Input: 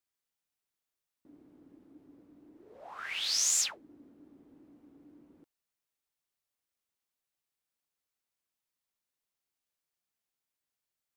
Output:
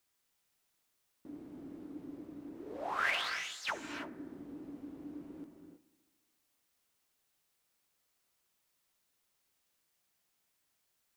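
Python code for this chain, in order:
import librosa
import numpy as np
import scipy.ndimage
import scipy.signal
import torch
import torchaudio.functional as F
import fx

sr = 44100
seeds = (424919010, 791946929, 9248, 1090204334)

y = fx.over_compress(x, sr, threshold_db=-39.0, ratio=-0.5)
y = fx.echo_bbd(y, sr, ms=71, stages=1024, feedback_pct=74, wet_db=-18.5)
y = fx.rev_gated(y, sr, seeds[0], gate_ms=350, shape='rising', drr_db=5.5)
y = F.gain(torch.from_numpy(y), 2.5).numpy()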